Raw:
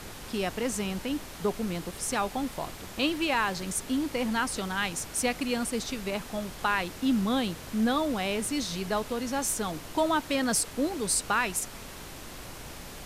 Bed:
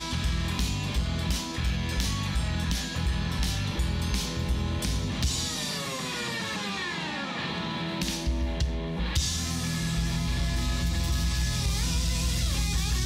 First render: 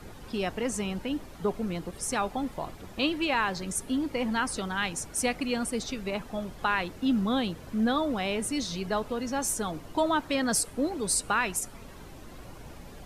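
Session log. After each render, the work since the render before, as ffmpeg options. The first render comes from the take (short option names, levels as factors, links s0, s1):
-af "afftdn=nr=11:nf=-43"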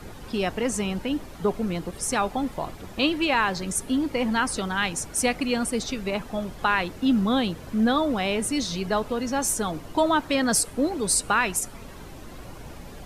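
-af "volume=1.68"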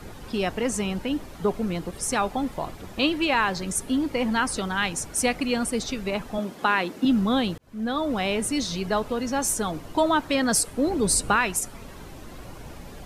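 -filter_complex "[0:a]asettb=1/sr,asplit=3[s0][s1][s2];[s0]atrim=end=6.384[s3];[s1]atrim=start=6.38:end=7.05,asetpts=PTS-STARTPTS,afade=t=in:d=0.004:c=qsin,afade=t=out:st=0.666:d=0.004:c=qsin,highpass=f=240:t=q:w=1.6[s4];[s2]atrim=start=7.046[s5];[s3][s4]acrossfade=d=0.004:c1=hsin:c2=qsin[s6];[s6][s5]acrossfade=d=0.004:c1=qsin:c2=hsin,asettb=1/sr,asplit=3[s7][s8][s9];[s7]atrim=end=10.874[s10];[s8]atrim=start=10.87:end=11.36,asetpts=PTS-STARTPTS,afade=t=in:d=0.004:c=qsin,afade=t=out:st=0.486:d=0.004:c=qsin,lowshelf=f=440:g=7[s11];[s9]atrim=start=11.356[s12];[s10][s11]acrossfade=d=0.004:c1=hsin:c2=qsin[s13];[s13][s12]acrossfade=d=0.004:c1=qsin:c2=hsin,asplit=2[s14][s15];[s14]atrim=end=7.58,asetpts=PTS-STARTPTS,afade=t=out:st=7.576:d=0.004:c=hsin[s16];[s15]atrim=start=7.58,asetpts=PTS-STARTPTS,afade=t=in:d=0.61[s17];[s16][s17]concat=n=2:v=0:a=1"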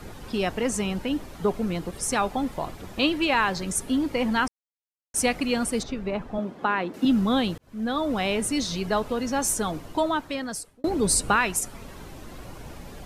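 -filter_complex "[0:a]asettb=1/sr,asplit=3[s0][s1][s2];[s0]atrim=end=5.834[s3];[s1]atrim=start=5.83:end=6.94,asetpts=PTS-STARTPTS,afade=t=in:d=0.004:c=qsin,afade=t=out:st=1.106:d=0.004:c=qsin,lowpass=f=1300:p=1[s4];[s2]atrim=start=6.936[s5];[s3][s4]acrossfade=d=0.004:c1=hsin:c2=qsin[s6];[s6][s5]acrossfade=d=0.004:c1=qsin:c2=hsin,asplit=4[s7][s8][s9][s10];[s7]atrim=end=4.48,asetpts=PTS-STARTPTS,afade=t=out:st=4.476:d=0.004:c=hsin[s11];[s8]atrim=start=4.48:end=5.14,asetpts=PTS-STARTPTS,volume=0[s12];[s9]atrim=start=5.14:end=10.84,asetpts=PTS-STARTPTS,afade=t=in:d=0.004:c=hsin,afade=t=out:st=4.59:d=1.11[s13];[s10]atrim=start=10.84,asetpts=PTS-STARTPTS,afade=t=in:d=0.004:c=hsin[s14];[s11][s12][s13][s14]concat=n=4:v=0:a=1"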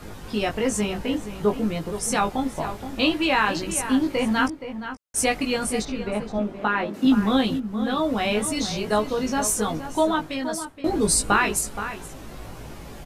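-filter_complex "[0:a]asplit=2[s0][s1];[s1]adelay=19,volume=0.708[s2];[s0][s2]amix=inputs=2:normalize=0,asplit=2[s3][s4];[s4]adelay=472.3,volume=0.316,highshelf=f=4000:g=-10.6[s5];[s3][s5]amix=inputs=2:normalize=0"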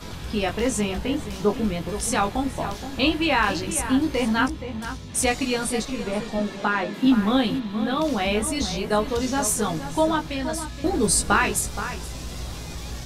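-filter_complex "[1:a]volume=0.376[s0];[0:a][s0]amix=inputs=2:normalize=0"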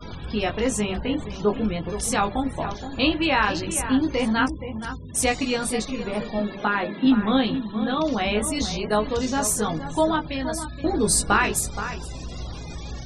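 -af "bandreject=f=196.6:t=h:w=4,bandreject=f=393.2:t=h:w=4,bandreject=f=589.8:t=h:w=4,afftfilt=real='re*gte(hypot(re,im),0.0126)':imag='im*gte(hypot(re,im),0.0126)':win_size=1024:overlap=0.75"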